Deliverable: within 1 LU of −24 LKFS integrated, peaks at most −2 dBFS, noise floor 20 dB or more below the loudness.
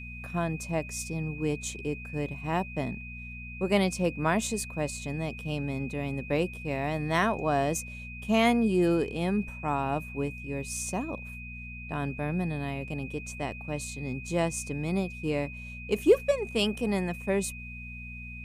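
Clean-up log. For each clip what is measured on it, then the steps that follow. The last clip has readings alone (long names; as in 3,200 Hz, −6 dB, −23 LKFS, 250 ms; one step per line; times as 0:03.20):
mains hum 60 Hz; hum harmonics up to 240 Hz; level of the hum −41 dBFS; interfering tone 2,500 Hz; level of the tone −42 dBFS; integrated loudness −30.0 LKFS; sample peak −9.0 dBFS; target loudness −24.0 LKFS
→ hum removal 60 Hz, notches 4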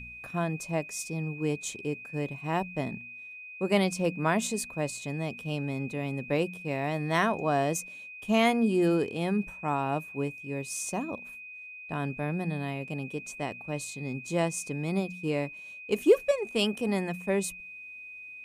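mains hum none found; interfering tone 2,500 Hz; level of the tone −42 dBFS
→ notch filter 2,500 Hz, Q 30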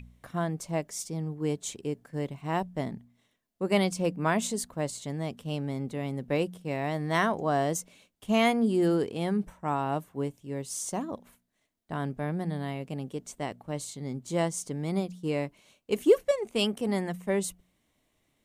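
interfering tone none found; integrated loudness −30.5 LKFS; sample peak −10.0 dBFS; target loudness −24.0 LKFS
→ level +6.5 dB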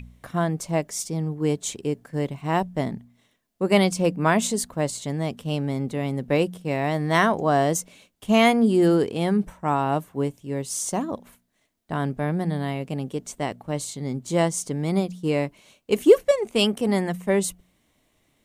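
integrated loudness −24.0 LKFS; sample peak −3.5 dBFS; background noise floor −69 dBFS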